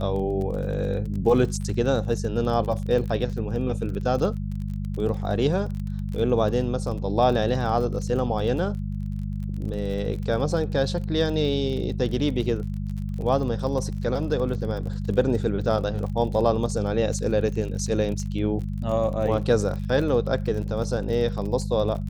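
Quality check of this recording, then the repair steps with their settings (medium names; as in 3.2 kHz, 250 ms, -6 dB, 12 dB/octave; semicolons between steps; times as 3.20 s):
crackle 32 per s -32 dBFS
hum 50 Hz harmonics 4 -29 dBFS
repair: de-click; de-hum 50 Hz, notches 4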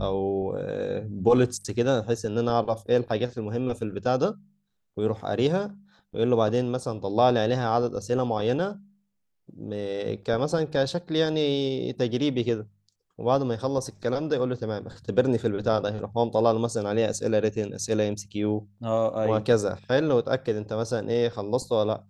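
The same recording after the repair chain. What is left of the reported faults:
nothing left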